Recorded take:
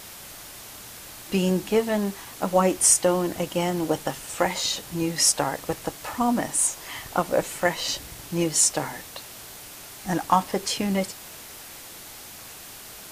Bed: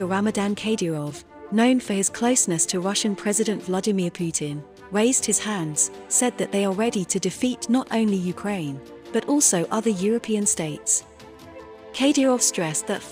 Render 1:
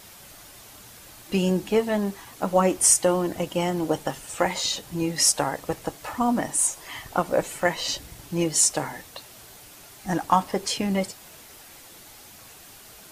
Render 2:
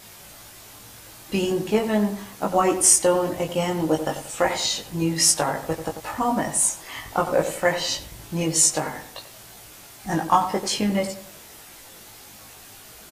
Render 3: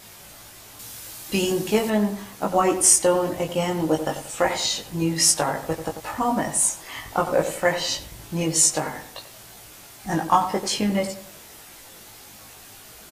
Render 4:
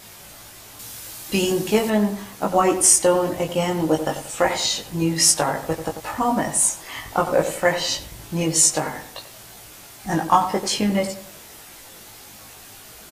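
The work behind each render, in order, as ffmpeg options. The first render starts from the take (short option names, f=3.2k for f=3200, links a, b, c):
-af "afftdn=nr=6:nf=-42"
-filter_complex "[0:a]asplit=2[a][b];[b]adelay=19,volume=-2.5dB[c];[a][c]amix=inputs=2:normalize=0,asplit=2[d][e];[e]adelay=91,lowpass=f=1.7k:p=1,volume=-9dB,asplit=2[f][g];[g]adelay=91,lowpass=f=1.7k:p=1,volume=0.37,asplit=2[h][i];[i]adelay=91,lowpass=f=1.7k:p=1,volume=0.37,asplit=2[j][k];[k]adelay=91,lowpass=f=1.7k:p=1,volume=0.37[l];[d][f][h][j][l]amix=inputs=5:normalize=0"
-filter_complex "[0:a]asettb=1/sr,asplit=3[a][b][c];[a]atrim=end=0.794[d];[b]atrim=start=0.79:end=1.9,asetpts=PTS-STARTPTS,afade=t=in:d=0.004:c=qsin,afade=t=out:st=1.106:d=0.004:c=qsin,highshelf=f=3.2k:g=8[e];[c]atrim=start=1.896[f];[d][e]acrossfade=d=0.004:c1=hsin:c2=qsin[g];[g][f]acrossfade=d=0.004:c1=qsin:c2=hsin"
-af "volume=2dB,alimiter=limit=-3dB:level=0:latency=1"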